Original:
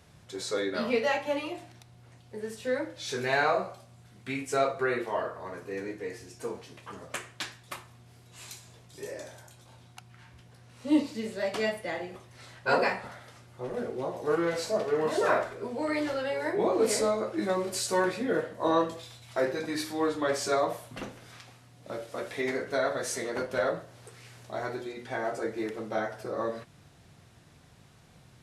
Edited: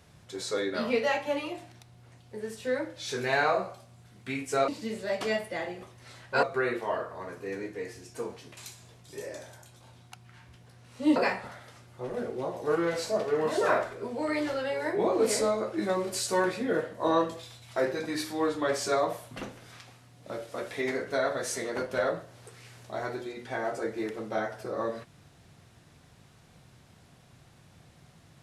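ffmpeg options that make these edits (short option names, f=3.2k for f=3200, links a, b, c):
-filter_complex "[0:a]asplit=5[a][b][c][d][e];[a]atrim=end=4.682[f];[b]atrim=start=11.008:end=12.762[g];[c]atrim=start=4.678:end=6.822[h];[d]atrim=start=8.418:end=11.012[i];[e]atrim=start=12.758[j];[f][g]acrossfade=d=0.004:c1=hsin:c2=hsin[k];[k][h]acrossfade=d=0.004:c1=hsin:c2=hsin[l];[l][i]acrossfade=d=0.004:c1=hsin:c2=hsin[m];[m][j]acrossfade=d=0.004:c1=hsin:c2=hsin"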